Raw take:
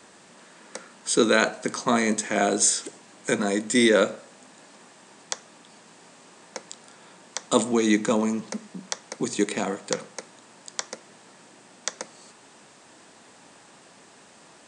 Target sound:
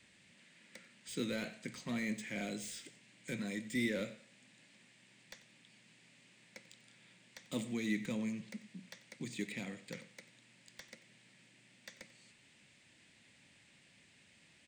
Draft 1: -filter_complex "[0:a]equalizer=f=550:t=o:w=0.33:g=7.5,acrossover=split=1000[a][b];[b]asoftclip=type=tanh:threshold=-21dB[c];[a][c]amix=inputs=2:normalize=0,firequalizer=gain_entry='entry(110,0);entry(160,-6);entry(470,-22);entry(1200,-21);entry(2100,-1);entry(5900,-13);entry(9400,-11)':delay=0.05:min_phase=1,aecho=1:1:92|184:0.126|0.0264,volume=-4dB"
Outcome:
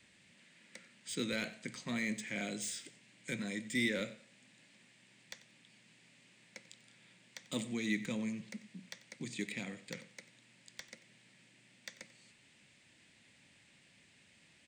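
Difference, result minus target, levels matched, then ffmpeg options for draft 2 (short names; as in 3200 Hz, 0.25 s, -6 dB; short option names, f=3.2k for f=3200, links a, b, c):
soft clip: distortion -6 dB
-filter_complex "[0:a]equalizer=f=550:t=o:w=0.33:g=7.5,acrossover=split=1000[a][b];[b]asoftclip=type=tanh:threshold=-29.5dB[c];[a][c]amix=inputs=2:normalize=0,firequalizer=gain_entry='entry(110,0);entry(160,-6);entry(470,-22);entry(1200,-21);entry(2100,-1);entry(5900,-13);entry(9400,-11)':delay=0.05:min_phase=1,aecho=1:1:92|184:0.126|0.0264,volume=-4dB"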